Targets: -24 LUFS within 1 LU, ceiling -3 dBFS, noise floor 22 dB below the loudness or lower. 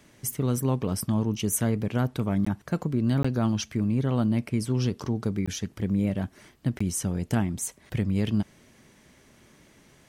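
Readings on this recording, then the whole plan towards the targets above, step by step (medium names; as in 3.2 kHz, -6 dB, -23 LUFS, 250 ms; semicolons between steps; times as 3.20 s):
dropouts 4; longest dropout 15 ms; loudness -27.5 LUFS; peak level -11.5 dBFS; loudness target -24.0 LUFS
-> interpolate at 2.45/3.23/5.46/6.79 s, 15 ms; trim +3.5 dB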